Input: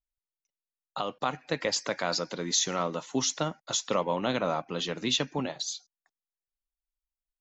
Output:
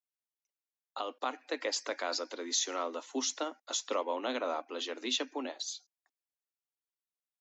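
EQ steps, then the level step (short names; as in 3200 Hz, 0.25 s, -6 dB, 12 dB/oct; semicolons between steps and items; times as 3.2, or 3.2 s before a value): steep high-pass 250 Hz 72 dB/oct; -5.0 dB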